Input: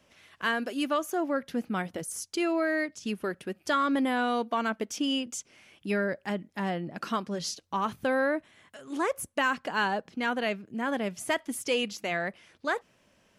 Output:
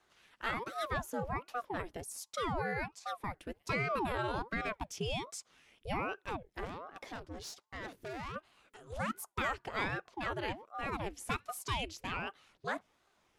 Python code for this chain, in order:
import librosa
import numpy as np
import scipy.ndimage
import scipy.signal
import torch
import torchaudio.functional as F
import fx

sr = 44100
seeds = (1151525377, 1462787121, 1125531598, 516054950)

y = fx.tube_stage(x, sr, drive_db=32.0, bias=0.55, at=(6.65, 8.36))
y = fx.ring_lfo(y, sr, carrier_hz=550.0, swing_pct=80, hz=1.3)
y = y * 10.0 ** (-5.0 / 20.0)